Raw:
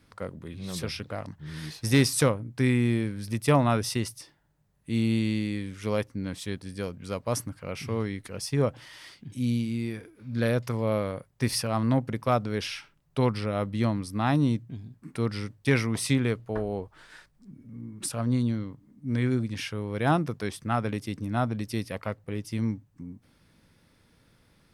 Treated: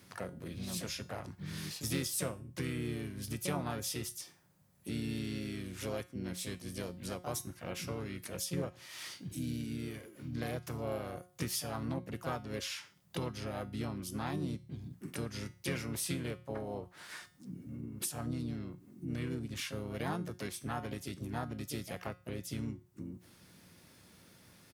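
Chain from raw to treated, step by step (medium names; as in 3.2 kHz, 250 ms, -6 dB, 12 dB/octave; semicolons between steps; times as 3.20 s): high-pass 72 Hz 24 dB/octave; treble shelf 5.5 kHz +9.5 dB; compression 2.5:1, threshold -43 dBFS, peak gain reduction 18 dB; harmony voices -7 st -10 dB, +4 st -5 dB; feedback comb 180 Hz, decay 0.41 s, harmonics all, mix 60%; trim +7 dB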